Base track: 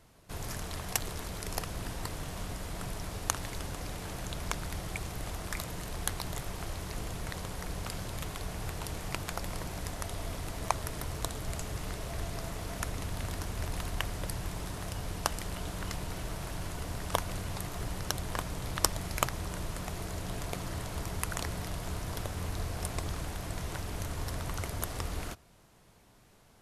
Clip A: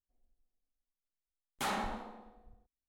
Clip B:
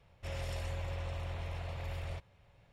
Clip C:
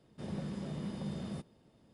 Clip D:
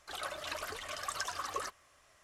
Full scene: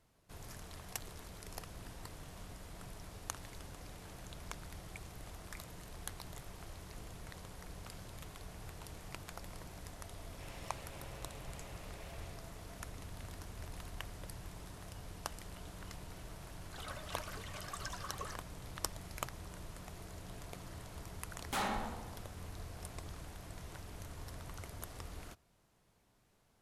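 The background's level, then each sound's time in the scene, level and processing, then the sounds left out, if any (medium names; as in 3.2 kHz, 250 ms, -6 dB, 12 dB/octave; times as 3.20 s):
base track -11.5 dB
10.15 s: add B -15 dB + spectral peaks clipped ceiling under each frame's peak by 16 dB
16.65 s: add D -7.5 dB
19.92 s: add A -1 dB
not used: C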